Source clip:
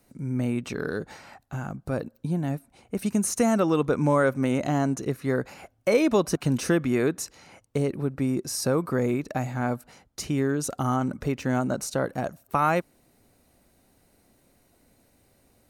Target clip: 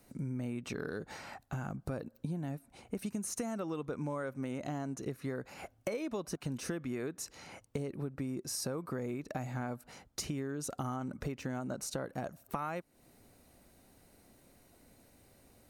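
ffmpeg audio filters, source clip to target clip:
-af "acompressor=threshold=-35dB:ratio=8"

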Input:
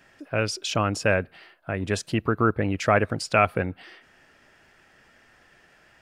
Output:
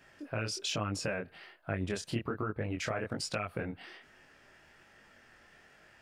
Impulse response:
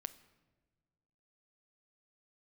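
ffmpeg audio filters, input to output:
-af "alimiter=limit=-15dB:level=0:latency=1:release=171,acompressor=threshold=-28dB:ratio=4,flanger=delay=19:depth=7.5:speed=1.2"

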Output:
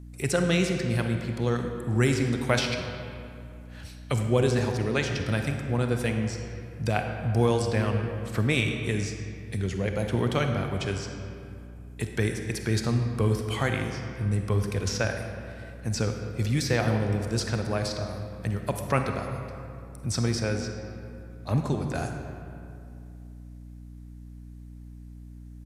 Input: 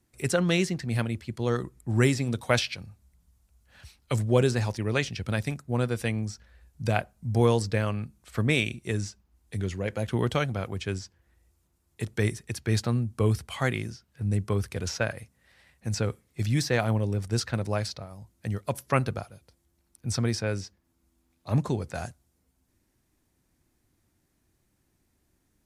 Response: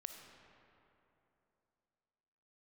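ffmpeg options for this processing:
-filter_complex "[0:a]aresample=32000,aresample=44100,asplit=2[a][b];[b]acompressor=threshold=-34dB:ratio=6,volume=2dB[c];[a][c]amix=inputs=2:normalize=0[d];[1:a]atrim=start_sample=2205,asetrate=52920,aresample=44100[e];[d][e]afir=irnorm=-1:irlink=0,aeval=exprs='val(0)+0.00501*(sin(2*PI*60*n/s)+sin(2*PI*2*60*n/s)/2+sin(2*PI*3*60*n/s)/3+sin(2*PI*4*60*n/s)/4+sin(2*PI*5*60*n/s)/5)':c=same,volume=4dB"

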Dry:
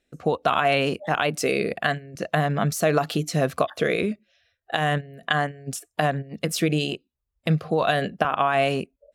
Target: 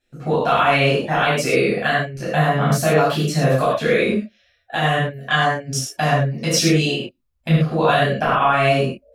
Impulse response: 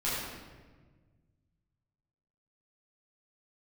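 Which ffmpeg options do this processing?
-filter_complex "[0:a]asettb=1/sr,asplit=3[a][b][c];[a]atrim=end=5.204[d];[b]atrim=start=5.2:end=6.82,asetpts=PTS-STARTPTS,afade=t=in:d=0.004:c=qsin,afade=t=out:st=1.616:d=0.004:c=qsin,equalizer=f=5.7k:t=o:w=0.49:g=12.5[e];[c]atrim=start=6.816[f];[d][e]acrossfade=d=0.004:c1=hsin:c2=qsin[g];[g][f]acrossfade=d=0.004:c1=qsin:c2=hsin[h];[1:a]atrim=start_sample=2205,atrim=end_sample=6174[i];[h][i]afir=irnorm=-1:irlink=0,volume=-1dB"

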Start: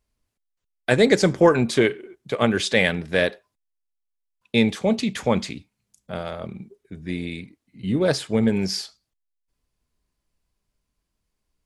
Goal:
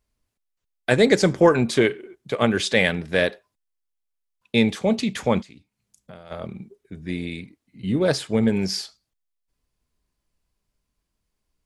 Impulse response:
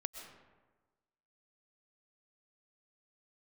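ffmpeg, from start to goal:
-filter_complex "[0:a]asplit=3[a][b][c];[a]afade=t=out:st=5.41:d=0.02[d];[b]acompressor=threshold=-42dB:ratio=4,afade=t=in:st=5.41:d=0.02,afade=t=out:st=6.3:d=0.02[e];[c]afade=t=in:st=6.3:d=0.02[f];[d][e][f]amix=inputs=3:normalize=0"

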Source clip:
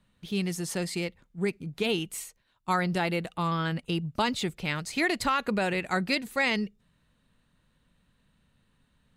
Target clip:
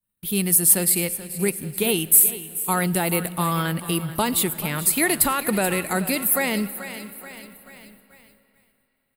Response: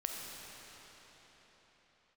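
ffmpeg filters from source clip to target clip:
-filter_complex "[0:a]highshelf=f=12k:g=7.5,aecho=1:1:432|864|1296|1728|2160:0.168|0.089|0.0472|0.025|0.0132,acrossover=split=780[a][b];[b]alimiter=limit=-22.5dB:level=0:latency=1:release=21[c];[a][c]amix=inputs=2:normalize=0,agate=range=-33dB:threshold=-53dB:ratio=3:detection=peak,asplit=2[d][e];[1:a]atrim=start_sample=2205[f];[e][f]afir=irnorm=-1:irlink=0,volume=-15.5dB[g];[d][g]amix=inputs=2:normalize=0,aexciter=amount=5.7:drive=9.9:freq=8.9k,volume=4dB"

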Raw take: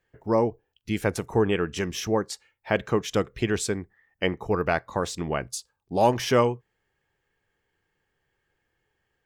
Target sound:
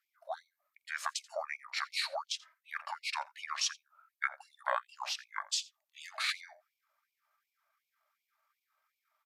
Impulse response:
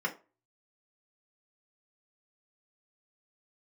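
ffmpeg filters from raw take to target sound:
-filter_complex "[0:a]lowshelf=f=96:g=-9,asetrate=32097,aresample=44100,atempo=1.37395,acompressor=threshold=-25dB:ratio=2,asplit=2[a][b];[b]aecho=0:1:84:0.0794[c];[a][c]amix=inputs=2:normalize=0,afftfilt=real='re*gte(b*sr/1024,520*pow(2200/520,0.5+0.5*sin(2*PI*2.7*pts/sr)))':imag='im*gte(b*sr/1024,520*pow(2200/520,0.5+0.5*sin(2*PI*2.7*pts/sr)))':win_size=1024:overlap=0.75"

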